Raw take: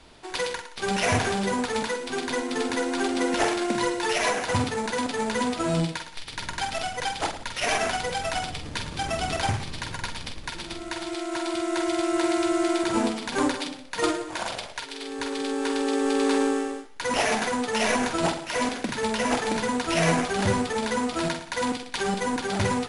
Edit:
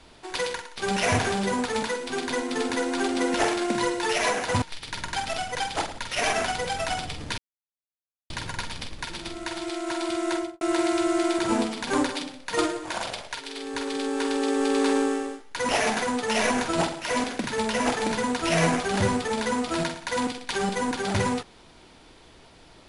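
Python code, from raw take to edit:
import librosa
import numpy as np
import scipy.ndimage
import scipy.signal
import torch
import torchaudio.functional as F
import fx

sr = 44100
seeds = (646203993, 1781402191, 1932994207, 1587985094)

y = fx.studio_fade_out(x, sr, start_s=11.76, length_s=0.3)
y = fx.edit(y, sr, fx.cut(start_s=4.62, length_s=1.45),
    fx.silence(start_s=8.83, length_s=0.92), tone=tone)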